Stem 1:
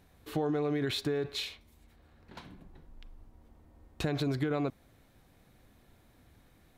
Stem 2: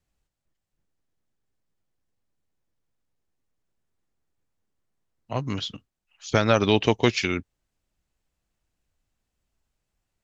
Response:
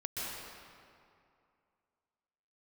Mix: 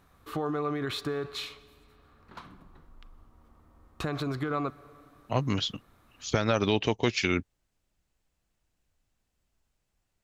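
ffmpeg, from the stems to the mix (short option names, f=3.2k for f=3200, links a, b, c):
-filter_complex "[0:a]equalizer=f=1.2k:w=3.3:g=14.5,volume=-1.5dB,asplit=2[a][b];[b]volume=-22.5dB[c];[1:a]volume=1dB[d];[2:a]atrim=start_sample=2205[e];[c][e]afir=irnorm=-1:irlink=0[f];[a][d][f]amix=inputs=3:normalize=0,alimiter=limit=-11.5dB:level=0:latency=1:release=335"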